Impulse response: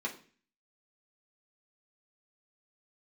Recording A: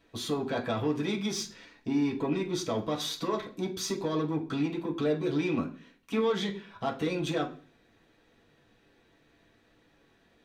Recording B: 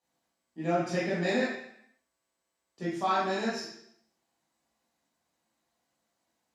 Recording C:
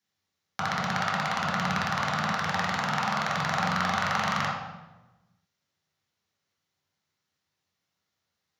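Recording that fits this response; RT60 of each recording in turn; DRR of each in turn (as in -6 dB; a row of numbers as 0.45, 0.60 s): A; 0.40, 0.70, 1.1 s; -2.5, -8.5, -4.5 dB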